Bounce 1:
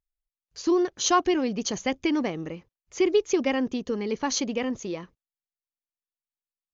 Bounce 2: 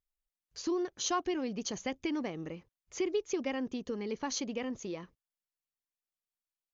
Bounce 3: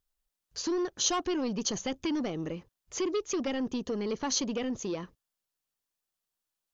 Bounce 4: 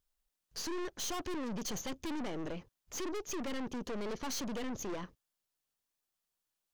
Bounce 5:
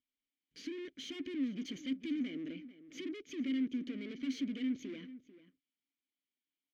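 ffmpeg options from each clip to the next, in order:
ffmpeg -i in.wav -af "acompressor=threshold=-39dB:ratio=1.5,volume=-3dB" out.wav
ffmpeg -i in.wav -filter_complex "[0:a]equalizer=frequency=2200:width_type=o:width=0.38:gain=-5,acrossover=split=2800[link_01][link_02];[link_01]asoftclip=type=tanh:threshold=-33dB[link_03];[link_03][link_02]amix=inputs=2:normalize=0,volume=7dB" out.wav
ffmpeg -i in.wav -af "aeval=exprs='(tanh(100*val(0)+0.65)-tanh(0.65))/100':channel_layout=same,volume=3dB" out.wav
ffmpeg -i in.wav -filter_complex "[0:a]asplit=3[link_01][link_02][link_03];[link_01]bandpass=frequency=270:width_type=q:width=8,volume=0dB[link_04];[link_02]bandpass=frequency=2290:width_type=q:width=8,volume=-6dB[link_05];[link_03]bandpass=frequency=3010:width_type=q:width=8,volume=-9dB[link_06];[link_04][link_05][link_06]amix=inputs=3:normalize=0,asplit=2[link_07][link_08];[link_08]adelay=443.1,volume=-15dB,highshelf=frequency=4000:gain=-9.97[link_09];[link_07][link_09]amix=inputs=2:normalize=0,volume=9dB" out.wav

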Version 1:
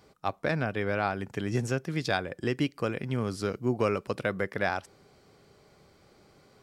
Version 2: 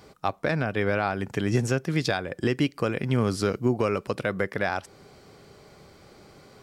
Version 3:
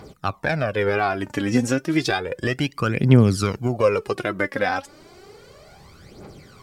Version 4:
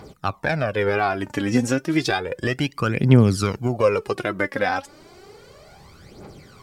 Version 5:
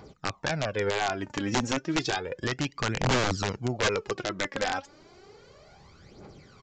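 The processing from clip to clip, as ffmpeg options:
ffmpeg -i in.wav -af "alimiter=limit=-20.5dB:level=0:latency=1:release=348,volume=8dB" out.wav
ffmpeg -i in.wav -af "aphaser=in_gain=1:out_gain=1:delay=4:decay=0.66:speed=0.32:type=triangular,volume=2.5dB" out.wav
ffmpeg -i in.wav -af "equalizer=frequency=880:width=5.5:gain=2" out.wav
ffmpeg -i in.wav -af "aeval=exprs='(mod(3.98*val(0)+1,2)-1)/3.98':channel_layout=same,aresample=16000,aresample=44100,volume=-6.5dB" out.wav

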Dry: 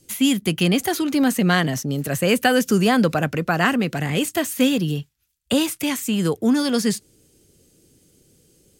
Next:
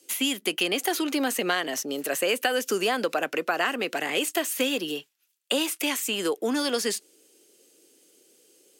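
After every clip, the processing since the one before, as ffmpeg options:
ffmpeg -i in.wav -af "highpass=frequency=330:width=0.5412,highpass=frequency=330:width=1.3066,equalizer=frequency=2800:width_type=o:width=0.43:gain=3.5,acompressor=threshold=-22dB:ratio=4" out.wav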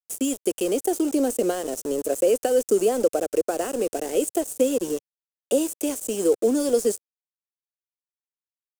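ffmpeg -i in.wav -af "tiltshelf=frequency=970:gain=4.5,aeval=exprs='val(0)*gte(abs(val(0)),0.0335)':channel_layout=same,equalizer=frequency=125:width_type=o:width=1:gain=-6,equalizer=frequency=500:width_type=o:width=1:gain=8,equalizer=frequency=1000:width_type=o:width=1:gain=-8,equalizer=frequency=2000:width_type=o:width=1:gain=-11,equalizer=frequency=4000:width_type=o:width=1:gain=-9,equalizer=frequency=8000:width_type=o:width=1:gain=11" out.wav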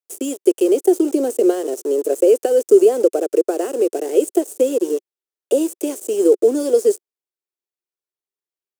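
ffmpeg -i in.wav -af "highpass=frequency=370:width_type=q:width=4.2,volume=-1dB" out.wav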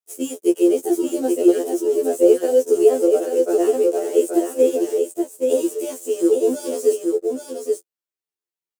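ffmpeg -i in.wav -af "aecho=1:1:827:0.596,afftfilt=real='re*2*eq(mod(b,4),0)':imag='im*2*eq(mod(b,4),0)':win_size=2048:overlap=0.75" out.wav

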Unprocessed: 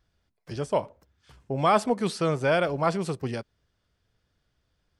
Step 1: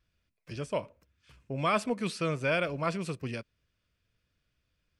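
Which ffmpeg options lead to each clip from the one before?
ffmpeg -i in.wav -af "equalizer=frequency=400:width_type=o:width=0.33:gain=-4,equalizer=frequency=800:width_type=o:width=0.33:gain=-11,equalizer=frequency=2500:width_type=o:width=0.33:gain=9,volume=-4.5dB" out.wav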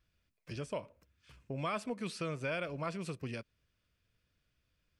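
ffmpeg -i in.wav -af "acompressor=threshold=-38dB:ratio=2,volume=-1dB" out.wav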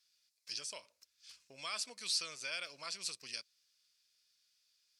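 ffmpeg -i in.wav -af "bandpass=frequency=4300:width_type=q:width=1.4:csg=0,aexciter=amount=3.4:drive=6.6:freq=4300,volume=6dB" out.wav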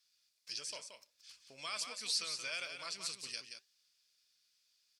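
ffmpeg -i in.wav -af "flanger=delay=3.1:depth=5.3:regen=82:speed=1.4:shape=triangular,aecho=1:1:177:0.447,volume=4dB" out.wav

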